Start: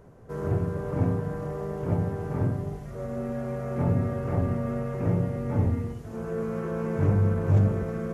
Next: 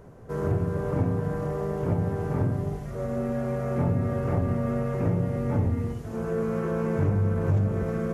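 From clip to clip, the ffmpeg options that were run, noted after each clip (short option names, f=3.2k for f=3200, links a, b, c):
-af "acompressor=threshold=-25dB:ratio=3,volume=3.5dB"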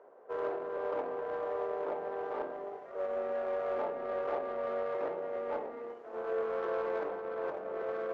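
-af "highpass=f=470:w=0.5412,highpass=f=470:w=1.3066,adynamicsmooth=sensitivity=2.5:basefreq=1.3k"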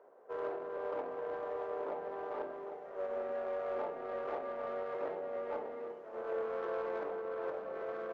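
-af "aecho=1:1:799:0.299,volume=-3.5dB"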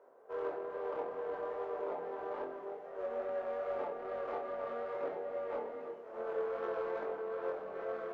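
-af "flanger=delay=22.5:depth=2.8:speed=2.4,volume=2.5dB"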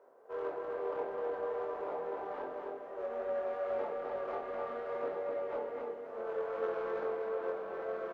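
-af "aecho=1:1:255:0.596"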